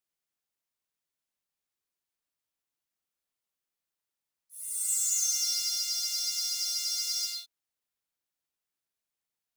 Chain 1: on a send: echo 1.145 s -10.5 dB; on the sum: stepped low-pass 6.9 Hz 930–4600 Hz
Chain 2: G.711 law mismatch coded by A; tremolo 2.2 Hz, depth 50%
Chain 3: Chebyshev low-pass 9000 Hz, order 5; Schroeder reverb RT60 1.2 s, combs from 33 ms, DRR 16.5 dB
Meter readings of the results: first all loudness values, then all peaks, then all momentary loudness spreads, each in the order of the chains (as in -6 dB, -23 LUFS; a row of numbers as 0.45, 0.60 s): -30.5, -31.0, -28.5 LUFS; -13.5, -17.5, -17.5 dBFS; 18, 8, 8 LU